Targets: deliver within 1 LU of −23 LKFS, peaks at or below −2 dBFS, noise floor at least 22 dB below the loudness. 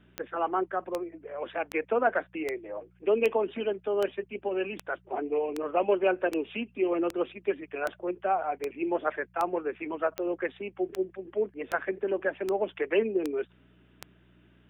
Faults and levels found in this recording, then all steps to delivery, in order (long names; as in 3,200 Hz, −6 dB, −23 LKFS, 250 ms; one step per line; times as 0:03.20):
number of clicks 19; mains hum 60 Hz; hum harmonics up to 180 Hz; level of the hum −59 dBFS; integrated loudness −30.5 LKFS; sample peak −13.0 dBFS; target loudness −23.0 LKFS
→ click removal
hum removal 60 Hz, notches 3
level +7.5 dB